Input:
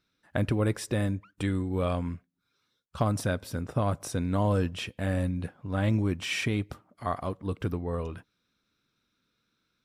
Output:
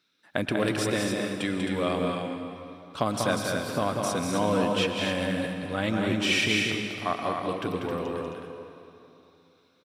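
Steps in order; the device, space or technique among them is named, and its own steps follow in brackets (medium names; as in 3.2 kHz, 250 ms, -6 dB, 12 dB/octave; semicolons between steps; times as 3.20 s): stadium PA (high-pass 200 Hz 12 dB/octave; peaking EQ 3.4 kHz +6 dB 1.7 oct; loudspeakers at several distances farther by 66 m -5 dB, 91 m -6 dB; reverberation RT60 3.0 s, pre-delay 105 ms, DRR 6.5 dB); trim +1.5 dB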